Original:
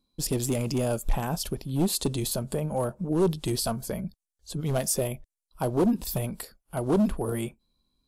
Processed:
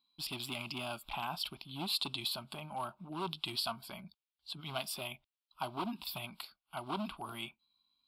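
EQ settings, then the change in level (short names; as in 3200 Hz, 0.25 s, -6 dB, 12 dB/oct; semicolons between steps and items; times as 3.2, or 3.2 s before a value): air absorption 250 m; differentiator; fixed phaser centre 1800 Hz, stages 6; +16.0 dB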